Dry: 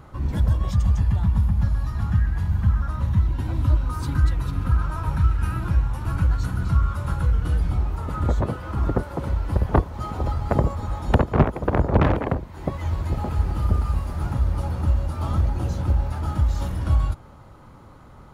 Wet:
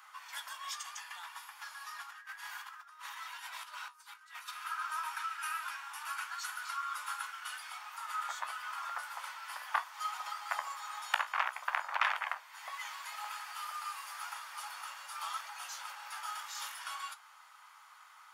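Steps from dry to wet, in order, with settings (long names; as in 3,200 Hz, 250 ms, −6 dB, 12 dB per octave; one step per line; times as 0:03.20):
Bessel high-pass filter 1,700 Hz, order 8
notch filter 4,000 Hz, Q 13
0:02.02–0:04.48: compressor whose output falls as the input rises −51 dBFS, ratio −0.5
flanger 0.58 Hz, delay 9.7 ms, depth 9.3 ms, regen −58%
level +7.5 dB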